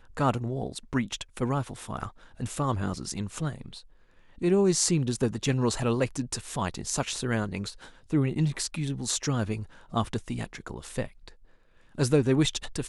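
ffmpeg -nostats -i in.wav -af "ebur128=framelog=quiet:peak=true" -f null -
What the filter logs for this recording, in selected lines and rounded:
Integrated loudness:
  I:         -29.0 LUFS
  Threshold: -39.5 LUFS
Loudness range:
  LRA:         5.6 LU
  Threshold: -49.6 LUFS
  LRA low:   -32.9 LUFS
  LRA high:  -27.3 LUFS
True peak:
  Peak:       -8.1 dBFS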